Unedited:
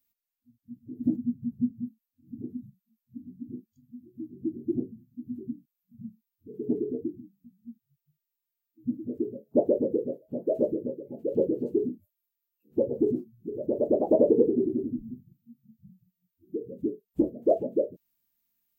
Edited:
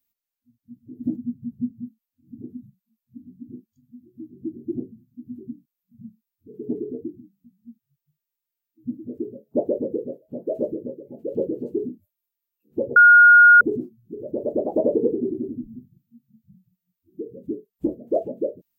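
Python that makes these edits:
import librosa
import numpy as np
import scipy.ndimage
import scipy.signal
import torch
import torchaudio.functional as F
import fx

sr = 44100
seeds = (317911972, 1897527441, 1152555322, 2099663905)

y = fx.edit(x, sr, fx.insert_tone(at_s=12.96, length_s=0.65, hz=1430.0, db=-7.0), tone=tone)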